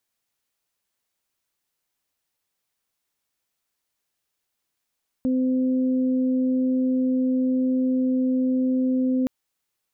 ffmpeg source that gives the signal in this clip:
ffmpeg -f lavfi -i "aevalsrc='0.112*sin(2*PI*257*t)+0.0282*sin(2*PI*514*t)':duration=4.02:sample_rate=44100" out.wav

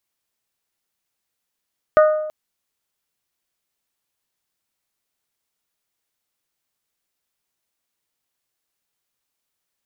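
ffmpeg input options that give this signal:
ffmpeg -f lavfi -i "aevalsrc='0.422*pow(10,-3*t/0.97)*sin(2*PI*616*t)+0.188*pow(10,-3*t/0.597)*sin(2*PI*1232*t)+0.0841*pow(10,-3*t/0.526)*sin(2*PI*1478.4*t)+0.0376*pow(10,-3*t/0.45)*sin(2*PI*1848*t)':duration=0.33:sample_rate=44100" out.wav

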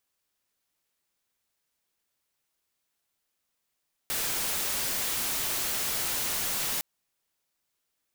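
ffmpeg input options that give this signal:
ffmpeg -f lavfi -i "anoisesrc=color=white:amplitude=0.0548:duration=2.71:sample_rate=44100:seed=1" out.wav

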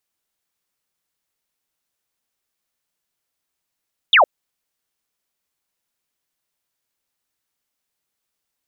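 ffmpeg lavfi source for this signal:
ffmpeg -f lavfi -i "aevalsrc='0.398*clip(t/0.002,0,1)*clip((0.11-t)/0.002,0,1)*sin(2*PI*3800*0.11/log(520/3800)*(exp(log(520/3800)*t/0.11)-1))':duration=0.11:sample_rate=44100" out.wav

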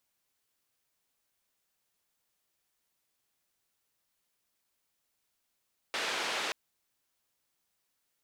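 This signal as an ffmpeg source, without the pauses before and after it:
ffmpeg -f lavfi -i "anoisesrc=color=white:duration=0.58:sample_rate=44100:seed=1,highpass=frequency=360,lowpass=frequency=3500,volume=-21.1dB" out.wav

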